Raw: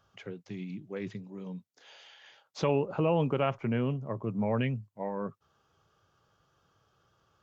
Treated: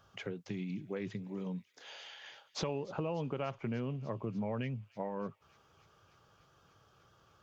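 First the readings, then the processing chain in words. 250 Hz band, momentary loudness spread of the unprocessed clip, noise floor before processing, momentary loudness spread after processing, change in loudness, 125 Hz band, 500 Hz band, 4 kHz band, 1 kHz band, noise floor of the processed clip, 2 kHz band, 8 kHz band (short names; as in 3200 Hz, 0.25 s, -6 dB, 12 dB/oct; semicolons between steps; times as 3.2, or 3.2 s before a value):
-6.0 dB, 17 LU, -74 dBFS, 10 LU, -7.5 dB, -6.5 dB, -7.5 dB, -1.0 dB, -7.5 dB, -68 dBFS, -5.5 dB, n/a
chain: compressor 4:1, threshold -40 dBFS, peak gain reduction 14.5 dB; on a send: thin delay 0.295 s, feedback 81%, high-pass 2400 Hz, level -20 dB; on the sum: gain +4 dB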